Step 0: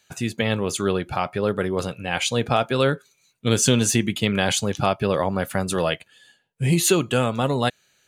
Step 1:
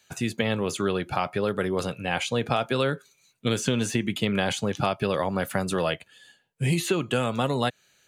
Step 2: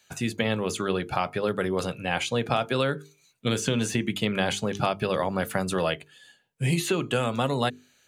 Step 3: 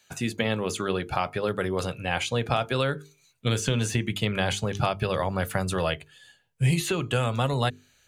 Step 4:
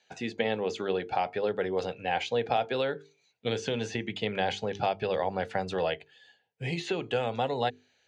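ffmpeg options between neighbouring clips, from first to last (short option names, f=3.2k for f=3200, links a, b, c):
-filter_complex "[0:a]acrossover=split=96|1500|3000[a][b][c][d];[a]acompressor=threshold=-48dB:ratio=4[e];[b]acompressor=threshold=-22dB:ratio=4[f];[c]acompressor=threshold=-33dB:ratio=4[g];[d]acompressor=threshold=-36dB:ratio=4[h];[e][f][g][h]amix=inputs=4:normalize=0"
-af "bandreject=f=50:t=h:w=6,bandreject=f=100:t=h:w=6,bandreject=f=150:t=h:w=6,bandreject=f=200:t=h:w=6,bandreject=f=250:t=h:w=6,bandreject=f=300:t=h:w=6,bandreject=f=350:t=h:w=6,bandreject=f=400:t=h:w=6,bandreject=f=450:t=h:w=6"
-af "asubboost=boost=6:cutoff=91"
-af "highpass=140,equalizer=f=140:t=q:w=4:g=-8,equalizer=f=460:t=q:w=4:g=7,equalizer=f=780:t=q:w=4:g=9,equalizer=f=1.2k:t=q:w=4:g=-9,equalizer=f=1.9k:t=q:w=4:g=3,lowpass=f=5.5k:w=0.5412,lowpass=f=5.5k:w=1.3066,volume=-5dB"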